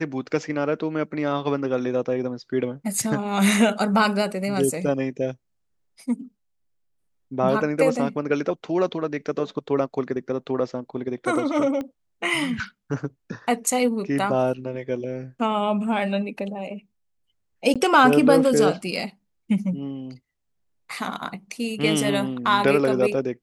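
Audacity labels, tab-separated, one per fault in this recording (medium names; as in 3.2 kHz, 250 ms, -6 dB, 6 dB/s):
11.810000	11.810000	pop -19 dBFS
17.740000	17.760000	dropout 16 ms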